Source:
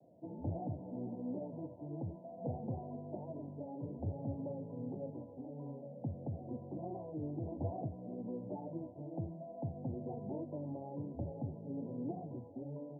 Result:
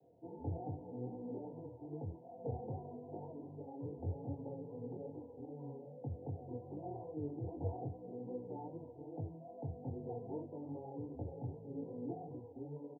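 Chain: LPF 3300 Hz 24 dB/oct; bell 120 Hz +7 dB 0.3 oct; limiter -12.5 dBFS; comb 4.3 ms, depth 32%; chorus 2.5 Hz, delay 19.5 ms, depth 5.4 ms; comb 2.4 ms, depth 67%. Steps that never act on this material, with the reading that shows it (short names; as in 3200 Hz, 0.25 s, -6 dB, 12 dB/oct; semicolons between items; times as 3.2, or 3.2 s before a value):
LPF 3300 Hz: input band ends at 1000 Hz; limiter -12.5 dBFS: input peak -24.5 dBFS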